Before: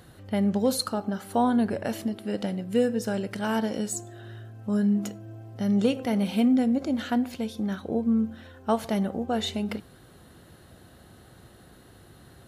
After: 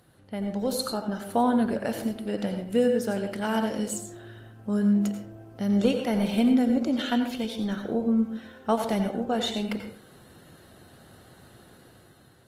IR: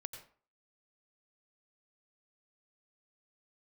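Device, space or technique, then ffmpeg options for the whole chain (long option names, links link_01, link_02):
far-field microphone of a smart speaker: -filter_complex "[0:a]asettb=1/sr,asplit=3[link_01][link_02][link_03];[link_01]atrim=end=6.914[link_04];[link_02]atrim=start=6.91:end=7.71,asetpts=PTS-STARTPTS,afade=type=in:duration=0.004:curve=qsin,afade=type=out:start_time=0.796:duration=0.004:curve=qsin,equalizer=frequency=3200:width_type=o:width=0.77:gain=6.5[link_05];[link_03]atrim=start=7.706[link_06];[link_04][link_05]acrossfade=duration=0.004:curve1=hsin:curve2=qsin[link_07];[link_07][link_06]acrossfade=duration=0.004:curve1=qsin:curve2=hsin[link_08];[1:a]atrim=start_sample=2205[link_09];[link_08][link_09]afir=irnorm=-1:irlink=0,highpass=frequency=120:poles=1,dynaudnorm=framelen=340:gausssize=5:maxgain=7dB,volume=-2.5dB" -ar 48000 -c:a libopus -b:a 24k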